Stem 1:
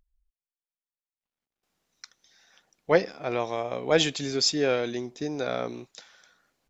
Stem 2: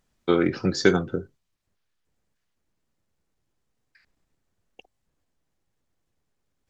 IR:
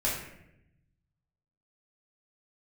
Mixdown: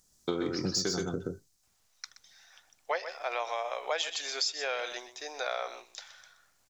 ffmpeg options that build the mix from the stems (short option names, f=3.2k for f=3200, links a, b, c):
-filter_complex "[0:a]highpass=f=640:w=0.5412,highpass=f=640:w=1.3066,volume=2dB,asplit=2[a][b];[b]volume=-14dB[c];[1:a]highshelf=f=3.9k:t=q:w=1.5:g=13.5,acontrast=52,volume=-8dB,asplit=2[d][e];[e]volume=-3.5dB[f];[c][f]amix=inputs=2:normalize=0,aecho=0:1:125:1[g];[a][d][g]amix=inputs=3:normalize=0,acompressor=threshold=-28dB:ratio=8"